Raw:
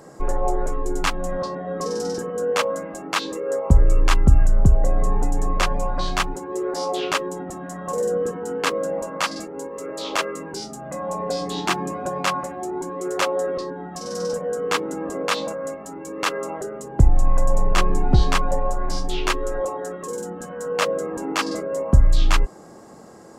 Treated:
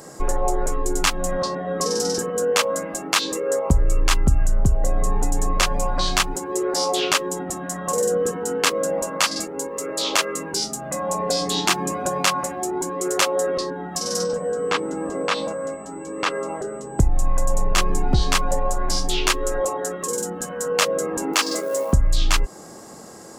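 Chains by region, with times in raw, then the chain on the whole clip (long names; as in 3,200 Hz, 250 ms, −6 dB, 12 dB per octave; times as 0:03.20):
0:14.23–0:16.98: floating-point word with a short mantissa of 6 bits + steady tone 8,000 Hz −41 dBFS + head-to-tape spacing loss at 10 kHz 22 dB
0:21.33–0:21.93: high-pass filter 270 Hz + floating-point word with a short mantissa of 4 bits
whole clip: high-shelf EQ 2,900 Hz +11 dB; downward compressor 2 to 1, threshold −19 dBFS; level +2 dB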